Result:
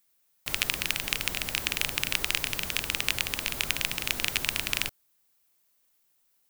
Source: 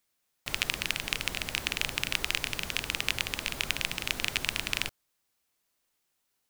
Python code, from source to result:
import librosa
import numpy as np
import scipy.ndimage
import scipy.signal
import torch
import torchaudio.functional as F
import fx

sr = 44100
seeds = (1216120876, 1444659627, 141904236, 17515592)

y = fx.high_shelf(x, sr, hz=11000.0, db=11.5)
y = y * 10.0 ** (1.0 / 20.0)